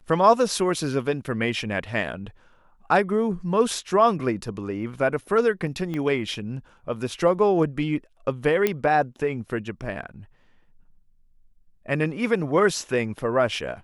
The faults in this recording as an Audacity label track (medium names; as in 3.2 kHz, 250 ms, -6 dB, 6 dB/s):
5.940000	5.940000	pop -19 dBFS
8.670000	8.670000	pop -8 dBFS